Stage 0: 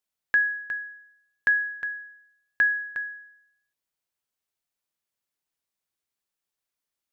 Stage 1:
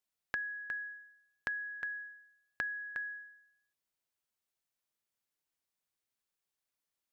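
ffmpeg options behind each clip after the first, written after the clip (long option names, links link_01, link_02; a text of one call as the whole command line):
ffmpeg -i in.wav -af "acompressor=threshold=-33dB:ratio=6,volume=-3dB" out.wav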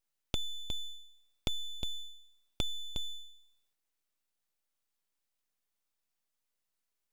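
ffmpeg -i in.wav -af "afreqshift=82,highpass=400,aeval=exprs='abs(val(0))':channel_layout=same,volume=5dB" out.wav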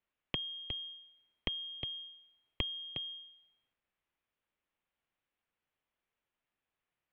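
ffmpeg -i in.wav -af "highpass=frequency=180:width_type=q:width=0.5412,highpass=frequency=180:width_type=q:width=1.307,lowpass=frequency=3400:width_type=q:width=0.5176,lowpass=frequency=3400:width_type=q:width=0.7071,lowpass=frequency=3400:width_type=q:width=1.932,afreqshift=-270,volume=4.5dB" out.wav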